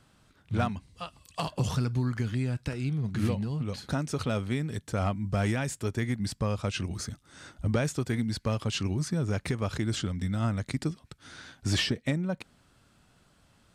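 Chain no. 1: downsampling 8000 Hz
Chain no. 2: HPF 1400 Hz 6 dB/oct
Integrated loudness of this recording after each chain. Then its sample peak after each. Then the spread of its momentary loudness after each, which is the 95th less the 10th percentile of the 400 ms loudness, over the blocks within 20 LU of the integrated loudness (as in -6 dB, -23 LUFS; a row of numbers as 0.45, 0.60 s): -31.5, -39.5 LUFS; -17.5, -20.5 dBFS; 9, 11 LU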